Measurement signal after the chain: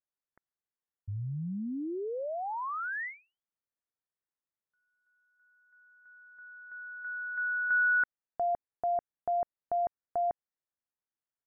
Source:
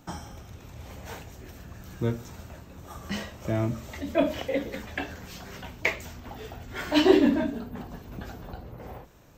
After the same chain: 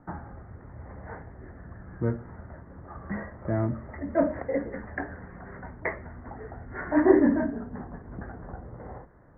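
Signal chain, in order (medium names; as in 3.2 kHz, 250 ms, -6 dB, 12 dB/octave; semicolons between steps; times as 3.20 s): steep low-pass 2 kHz 96 dB/octave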